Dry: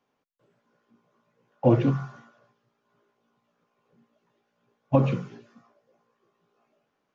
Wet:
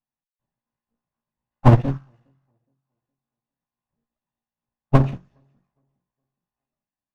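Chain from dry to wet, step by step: minimum comb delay 1.1 ms; low shelf 190 Hz +8.5 dB; on a send: tape echo 0.414 s, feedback 34%, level -19 dB, low-pass 1200 Hz; on the sum: upward expander 2.5:1, over -30 dBFS; gain +6.5 dB

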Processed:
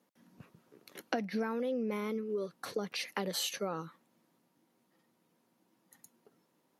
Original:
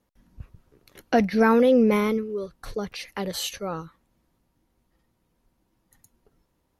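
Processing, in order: HPF 170 Hz 24 dB/oct; compressor 12:1, threshold -31 dBFS, peak gain reduction 18 dB

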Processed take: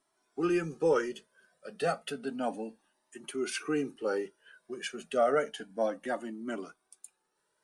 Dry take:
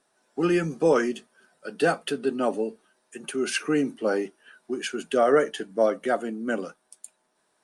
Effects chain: cascading flanger rising 0.31 Hz; gain -2.5 dB

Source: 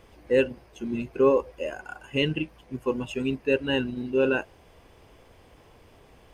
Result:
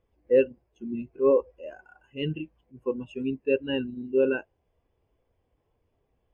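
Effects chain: 1.13–2.84 transient shaper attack -8 dB, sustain +2 dB; spectral expander 1.5:1

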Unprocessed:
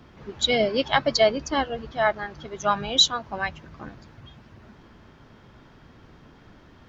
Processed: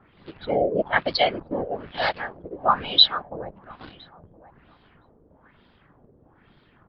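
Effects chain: 1.51–2.61 block floating point 3-bit; whisperiser; in parallel at -4.5 dB: bit-crush 6-bit; on the sum: downsampling 11025 Hz; on a send: feedback echo 1.015 s, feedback 18%, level -21 dB; on the sum: LFO low-pass sine 1.1 Hz 470–4000 Hz; gain -7.5 dB

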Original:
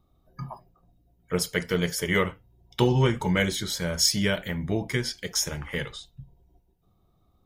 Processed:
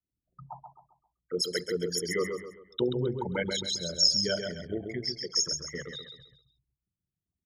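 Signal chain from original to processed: formant sharpening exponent 3; expander -58 dBFS; HPF 590 Hz 6 dB/oct; bell 2100 Hz -10.5 dB 0.54 oct; feedback echo 0.133 s, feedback 37%, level -6 dB

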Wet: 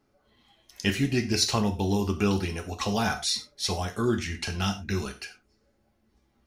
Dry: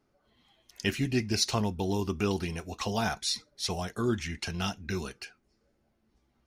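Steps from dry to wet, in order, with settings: non-linear reverb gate 0.13 s falling, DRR 5.5 dB; gain +2.5 dB

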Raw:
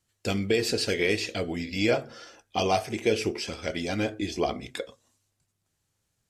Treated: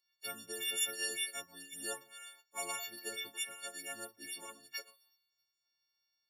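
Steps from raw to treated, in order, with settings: frequency quantiser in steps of 4 st; differentiator; spectral gate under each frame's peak -10 dB weak; mismatched tape noise reduction decoder only; gain +2 dB

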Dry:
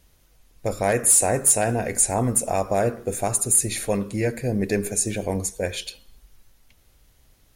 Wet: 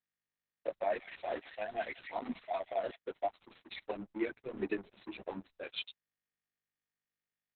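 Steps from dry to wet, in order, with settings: per-bin expansion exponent 2; steep high-pass 200 Hz 96 dB/oct; low shelf 330 Hz -4 dB; comb 3.2 ms, depth 30%; dynamic EQ 690 Hz, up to +5 dB, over -43 dBFS, Q 7.6; compressor 4:1, threshold -30 dBFS, peak gain reduction 13 dB; crossover distortion -45 dBFS; chorus voices 2, 1.2 Hz, delay 13 ms, depth 3.5 ms; 0.7–2.96 delay with a stepping band-pass 0.182 s, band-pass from 2600 Hz, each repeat 0.7 oct, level -1.5 dB; gain +3.5 dB; Opus 6 kbps 48000 Hz

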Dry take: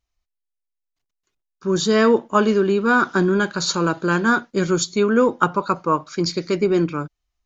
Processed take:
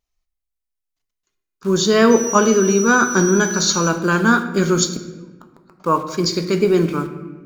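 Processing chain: high shelf 6400 Hz +6 dB; 2.1–3.88 whine 5900 Hz -26 dBFS; 4.9–5.8 flipped gate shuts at -16 dBFS, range -36 dB; in parallel at -6 dB: bit-crush 6-bit; on the sum: wow and flutter 27 cents; on a send at -7 dB: reverb RT60 1.2 s, pre-delay 4 ms; on the sum: gain -2 dB

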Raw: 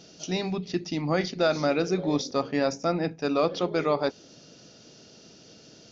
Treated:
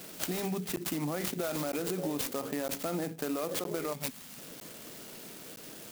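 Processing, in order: spectral gain 3.93–4.38, 260–2100 Hz -21 dB; limiter -23 dBFS, peak gain reduction 10.5 dB; HPF 150 Hz; high shelf 5500 Hz +9.5 dB; compressor, threshold -33 dBFS, peak gain reduction 6.5 dB; crackling interface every 0.96 s, samples 512, zero, from 0.76; clock jitter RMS 0.066 ms; gain +3 dB

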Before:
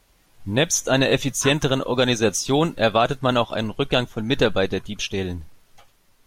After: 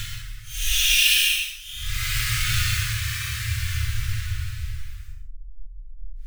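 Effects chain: half-waves squared off; inverse Chebyshev band-stop 160–890 Hz, stop band 40 dB; Paulstretch 9.6×, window 0.05 s, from 4.93; non-linear reverb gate 0.15 s flat, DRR 1.5 dB; gain +1.5 dB

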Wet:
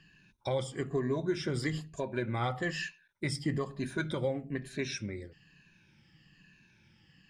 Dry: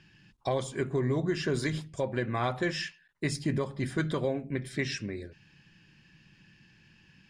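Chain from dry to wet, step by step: moving spectral ripple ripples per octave 1.5, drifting -1.1 Hz, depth 12 dB; gain -4.5 dB

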